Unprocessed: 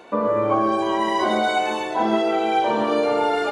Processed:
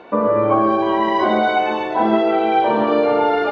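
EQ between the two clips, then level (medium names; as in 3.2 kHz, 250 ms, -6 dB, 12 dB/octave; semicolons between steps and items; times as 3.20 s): distance through air 260 m; +5.0 dB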